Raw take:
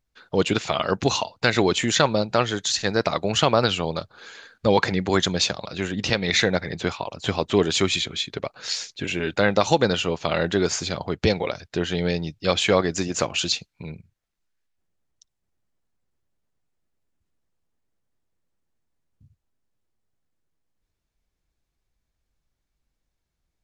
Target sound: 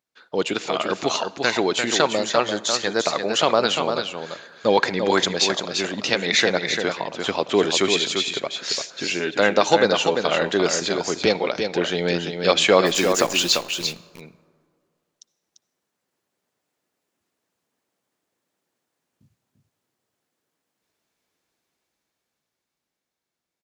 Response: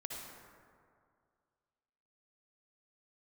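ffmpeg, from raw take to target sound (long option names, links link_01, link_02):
-filter_complex "[0:a]highpass=260,dynaudnorm=framelen=180:gausssize=21:maxgain=9dB,asplit=3[link_01][link_02][link_03];[link_01]afade=type=out:start_time=12.85:duration=0.02[link_04];[link_02]acrusher=bits=6:dc=4:mix=0:aa=0.000001,afade=type=in:start_time=12.85:duration=0.02,afade=type=out:start_time=13.85:duration=0.02[link_05];[link_03]afade=type=in:start_time=13.85:duration=0.02[link_06];[link_04][link_05][link_06]amix=inputs=3:normalize=0,aecho=1:1:344:0.501,asplit=2[link_07][link_08];[1:a]atrim=start_sample=2205[link_09];[link_08][link_09]afir=irnorm=-1:irlink=0,volume=-16dB[link_10];[link_07][link_10]amix=inputs=2:normalize=0,volume=-1.5dB"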